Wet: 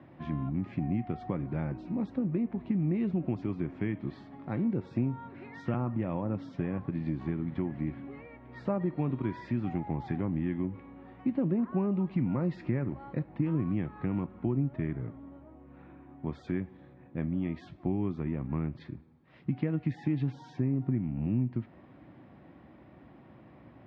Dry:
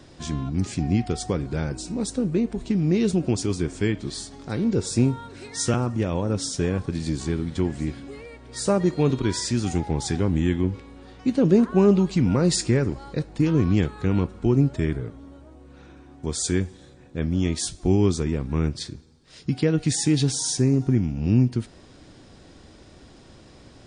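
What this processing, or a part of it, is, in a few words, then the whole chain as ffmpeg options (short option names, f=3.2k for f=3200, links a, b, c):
bass amplifier: -af "acompressor=threshold=-24dB:ratio=3,highpass=f=76:w=0.5412,highpass=f=76:w=1.3066,equalizer=f=88:t=q:w=4:g=-10,equalizer=f=440:t=q:w=4:g=-10,equalizer=f=1.5k:t=q:w=4:g=-7,lowpass=f=2.1k:w=0.5412,lowpass=f=2.1k:w=1.3066,volume=-2dB"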